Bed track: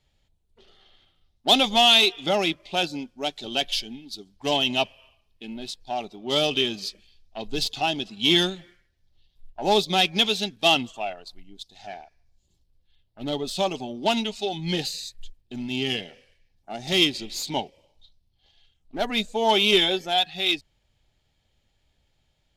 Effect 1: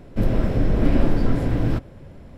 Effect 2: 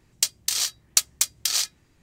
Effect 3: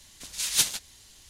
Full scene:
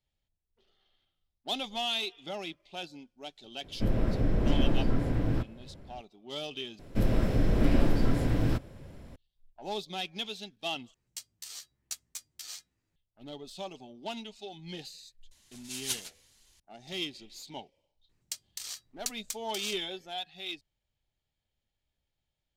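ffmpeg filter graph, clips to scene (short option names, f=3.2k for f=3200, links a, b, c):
-filter_complex "[1:a]asplit=2[a][b];[2:a]asplit=2[c][d];[0:a]volume=-15.5dB[e];[b]highshelf=f=3.1k:g=9[f];[c]asplit=2[g][h];[h]adelay=11.5,afreqshift=-1.3[i];[g][i]amix=inputs=2:normalize=1[j];[3:a]flanger=delay=1.9:depth=9.2:regen=41:speed=1.7:shape=sinusoidal[k];[e]asplit=3[l][m][n];[l]atrim=end=6.794[o];[f]atrim=end=2.37,asetpts=PTS-STARTPTS,volume=-6dB[p];[m]atrim=start=9.156:end=10.944[q];[j]atrim=end=2.02,asetpts=PTS-STARTPTS,volume=-16.5dB[r];[n]atrim=start=12.956[s];[a]atrim=end=2.37,asetpts=PTS-STARTPTS,volume=-7.5dB,afade=t=in:d=0.004:c=hsin,afade=t=out:st=2.366:d=0.004:c=hsin,adelay=3640[t];[k]atrim=end=1.29,asetpts=PTS-STARTPTS,volume=-7dB,afade=t=in:d=0.004:c=hsin,afade=t=out:st=1.286:d=0.004:c=hsin,adelay=15310[u];[d]atrim=end=2.02,asetpts=PTS-STARTPTS,volume=-16dB,afade=t=in:d=0.004:c=hsin,afade=t=out:st=2.016:d=0.004:c=hsin,adelay=18090[v];[o][p]acrossfade=d=0.004:c1=hsin:c2=hsin[w];[w][q]acrossfade=d=0.004:c1=hsin:c2=hsin[x];[x][r]acrossfade=d=0.004:c1=hsin:c2=hsin[y];[y][s]acrossfade=d=0.004:c1=hsin:c2=hsin[z];[z][t][u][v]amix=inputs=4:normalize=0"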